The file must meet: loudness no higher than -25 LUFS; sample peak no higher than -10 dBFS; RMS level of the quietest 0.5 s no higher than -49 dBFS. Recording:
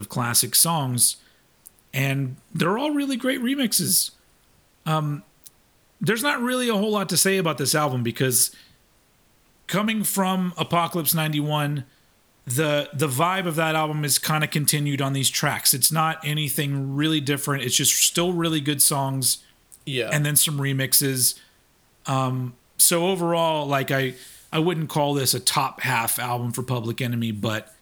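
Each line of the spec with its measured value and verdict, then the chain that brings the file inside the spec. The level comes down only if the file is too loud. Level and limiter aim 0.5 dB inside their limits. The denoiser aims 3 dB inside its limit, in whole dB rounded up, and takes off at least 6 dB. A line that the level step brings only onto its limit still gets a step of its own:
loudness -21.5 LUFS: fail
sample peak -2.5 dBFS: fail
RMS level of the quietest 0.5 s -60 dBFS: OK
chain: gain -4 dB; limiter -10.5 dBFS

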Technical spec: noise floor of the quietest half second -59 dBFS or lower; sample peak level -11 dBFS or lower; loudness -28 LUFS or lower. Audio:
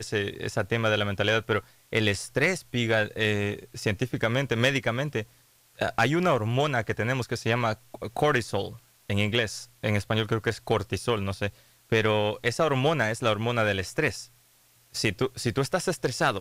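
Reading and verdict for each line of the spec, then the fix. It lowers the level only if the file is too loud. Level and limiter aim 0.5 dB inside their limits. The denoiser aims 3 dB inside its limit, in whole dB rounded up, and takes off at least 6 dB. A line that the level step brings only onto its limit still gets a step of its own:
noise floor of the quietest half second -61 dBFS: OK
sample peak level -11.5 dBFS: OK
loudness -27.0 LUFS: fail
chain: gain -1.5 dB

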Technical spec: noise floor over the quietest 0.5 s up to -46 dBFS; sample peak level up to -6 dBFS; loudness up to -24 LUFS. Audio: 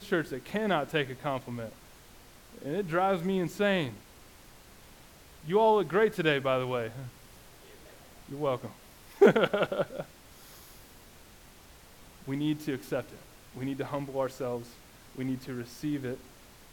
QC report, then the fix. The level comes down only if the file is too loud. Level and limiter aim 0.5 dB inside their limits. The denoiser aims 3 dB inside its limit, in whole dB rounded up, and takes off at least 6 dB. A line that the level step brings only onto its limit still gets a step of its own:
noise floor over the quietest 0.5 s -54 dBFS: OK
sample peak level -9.5 dBFS: OK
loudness -30.0 LUFS: OK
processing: none

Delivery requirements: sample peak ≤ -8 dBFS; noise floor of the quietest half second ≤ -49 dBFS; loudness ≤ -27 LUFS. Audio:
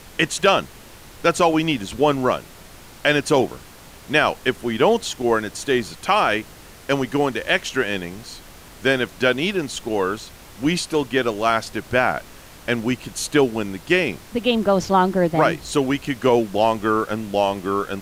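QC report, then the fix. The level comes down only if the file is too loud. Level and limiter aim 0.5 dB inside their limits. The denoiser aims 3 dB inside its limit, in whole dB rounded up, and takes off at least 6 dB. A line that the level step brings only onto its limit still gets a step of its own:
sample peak -5.0 dBFS: fail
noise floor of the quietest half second -43 dBFS: fail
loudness -21.0 LUFS: fail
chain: gain -6.5 dB

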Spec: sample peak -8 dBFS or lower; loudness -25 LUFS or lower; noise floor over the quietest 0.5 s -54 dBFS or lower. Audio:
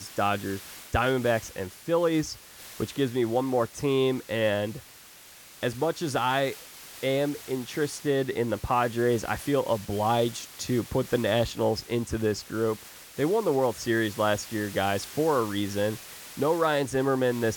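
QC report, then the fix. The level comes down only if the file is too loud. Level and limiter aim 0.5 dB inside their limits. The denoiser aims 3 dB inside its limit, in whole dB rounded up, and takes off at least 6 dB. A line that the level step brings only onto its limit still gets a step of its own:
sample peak -11.0 dBFS: OK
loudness -27.5 LUFS: OK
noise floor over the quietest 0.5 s -50 dBFS: fail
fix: denoiser 7 dB, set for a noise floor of -50 dBFS

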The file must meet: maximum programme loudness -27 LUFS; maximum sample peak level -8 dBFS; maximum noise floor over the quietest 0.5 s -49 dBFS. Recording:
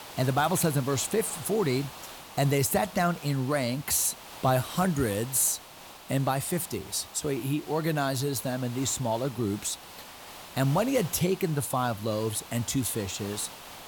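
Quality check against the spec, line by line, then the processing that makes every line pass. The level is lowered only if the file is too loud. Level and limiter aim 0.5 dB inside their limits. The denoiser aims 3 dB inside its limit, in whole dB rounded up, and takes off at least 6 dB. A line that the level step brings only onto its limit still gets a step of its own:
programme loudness -28.0 LUFS: OK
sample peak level -12.5 dBFS: OK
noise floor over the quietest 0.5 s -48 dBFS: fail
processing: denoiser 6 dB, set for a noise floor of -48 dBFS

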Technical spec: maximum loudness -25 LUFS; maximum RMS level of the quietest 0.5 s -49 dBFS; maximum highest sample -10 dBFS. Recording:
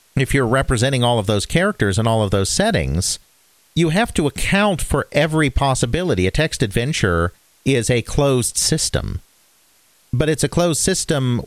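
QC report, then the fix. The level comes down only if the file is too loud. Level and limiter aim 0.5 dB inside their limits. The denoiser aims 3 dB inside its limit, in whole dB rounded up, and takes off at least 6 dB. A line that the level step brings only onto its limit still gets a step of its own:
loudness -18.0 LUFS: fail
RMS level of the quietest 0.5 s -56 dBFS: OK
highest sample -3.0 dBFS: fail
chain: gain -7.5 dB

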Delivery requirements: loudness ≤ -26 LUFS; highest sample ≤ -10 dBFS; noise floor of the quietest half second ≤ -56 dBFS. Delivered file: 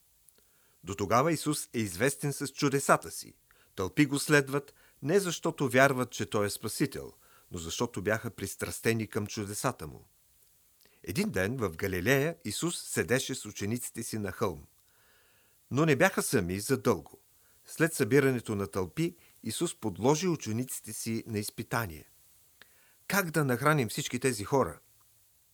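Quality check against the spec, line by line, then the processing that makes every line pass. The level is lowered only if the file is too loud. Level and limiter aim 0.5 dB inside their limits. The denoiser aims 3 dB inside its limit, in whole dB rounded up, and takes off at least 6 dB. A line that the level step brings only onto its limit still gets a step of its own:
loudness -30.5 LUFS: OK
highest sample -6.5 dBFS: fail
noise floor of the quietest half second -65 dBFS: OK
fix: limiter -10.5 dBFS

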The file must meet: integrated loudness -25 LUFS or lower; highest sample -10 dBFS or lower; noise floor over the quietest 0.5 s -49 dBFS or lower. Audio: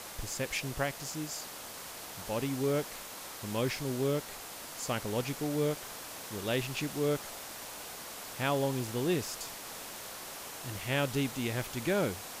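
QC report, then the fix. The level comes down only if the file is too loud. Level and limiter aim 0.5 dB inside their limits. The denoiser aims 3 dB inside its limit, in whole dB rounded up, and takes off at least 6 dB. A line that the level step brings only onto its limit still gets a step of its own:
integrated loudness -35.0 LUFS: OK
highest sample -17.0 dBFS: OK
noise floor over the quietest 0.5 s -45 dBFS: fail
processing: denoiser 7 dB, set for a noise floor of -45 dBFS

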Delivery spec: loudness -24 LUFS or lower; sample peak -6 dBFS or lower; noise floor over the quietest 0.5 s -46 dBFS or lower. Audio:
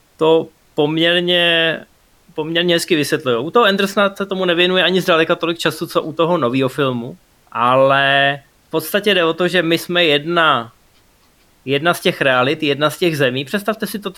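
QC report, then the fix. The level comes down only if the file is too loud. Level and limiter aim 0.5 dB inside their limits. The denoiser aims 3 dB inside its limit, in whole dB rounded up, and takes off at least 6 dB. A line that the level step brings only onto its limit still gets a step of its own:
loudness -15.5 LUFS: fail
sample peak -2.0 dBFS: fail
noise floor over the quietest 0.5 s -54 dBFS: OK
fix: gain -9 dB

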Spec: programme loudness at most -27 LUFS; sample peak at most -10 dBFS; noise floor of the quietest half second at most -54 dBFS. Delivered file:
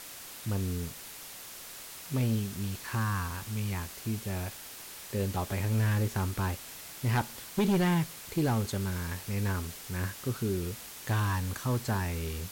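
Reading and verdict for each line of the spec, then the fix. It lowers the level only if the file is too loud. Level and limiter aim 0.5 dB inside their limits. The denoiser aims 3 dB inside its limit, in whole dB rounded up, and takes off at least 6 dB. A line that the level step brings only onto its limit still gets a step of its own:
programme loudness -32.5 LUFS: OK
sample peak -20.5 dBFS: OK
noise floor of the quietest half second -45 dBFS: fail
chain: denoiser 12 dB, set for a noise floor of -45 dBFS

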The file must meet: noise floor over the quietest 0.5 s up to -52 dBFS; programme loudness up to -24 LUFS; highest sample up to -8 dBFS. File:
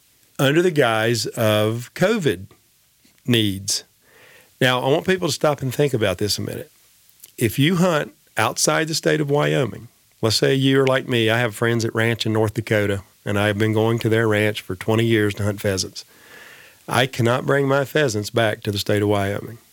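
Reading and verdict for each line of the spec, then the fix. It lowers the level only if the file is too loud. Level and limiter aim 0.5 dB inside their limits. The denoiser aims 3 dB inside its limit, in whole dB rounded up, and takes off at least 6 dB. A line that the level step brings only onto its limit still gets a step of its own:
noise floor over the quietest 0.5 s -59 dBFS: OK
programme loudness -20.0 LUFS: fail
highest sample -4.5 dBFS: fail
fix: gain -4.5 dB

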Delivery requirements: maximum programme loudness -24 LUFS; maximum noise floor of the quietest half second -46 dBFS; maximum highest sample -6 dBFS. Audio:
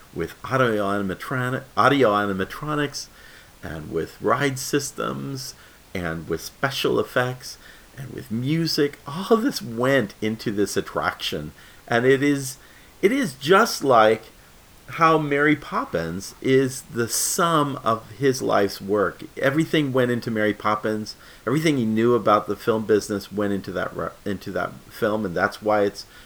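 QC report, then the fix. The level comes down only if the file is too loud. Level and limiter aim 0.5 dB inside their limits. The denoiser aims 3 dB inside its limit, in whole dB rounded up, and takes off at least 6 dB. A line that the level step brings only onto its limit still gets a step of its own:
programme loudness -22.5 LUFS: fail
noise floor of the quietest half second -49 dBFS: OK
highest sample -4.5 dBFS: fail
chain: gain -2 dB

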